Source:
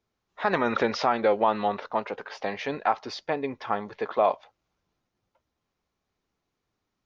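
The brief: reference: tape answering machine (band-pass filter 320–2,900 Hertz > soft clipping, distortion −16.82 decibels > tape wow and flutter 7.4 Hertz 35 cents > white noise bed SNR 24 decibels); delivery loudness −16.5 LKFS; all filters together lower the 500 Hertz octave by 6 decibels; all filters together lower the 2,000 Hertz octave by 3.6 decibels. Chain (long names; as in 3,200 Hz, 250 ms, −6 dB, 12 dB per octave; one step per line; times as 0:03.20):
band-pass filter 320–2,900 Hz
parametric band 500 Hz −6.5 dB
parametric band 2,000 Hz −3.5 dB
soft clipping −18 dBFS
tape wow and flutter 7.4 Hz 35 cents
white noise bed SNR 24 dB
level +16.5 dB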